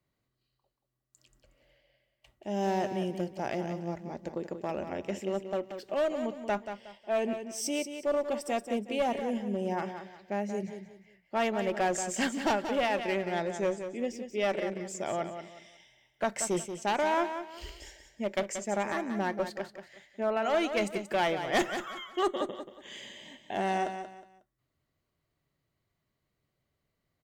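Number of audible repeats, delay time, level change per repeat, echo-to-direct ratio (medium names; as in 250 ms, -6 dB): 3, 182 ms, -11.0 dB, -8.5 dB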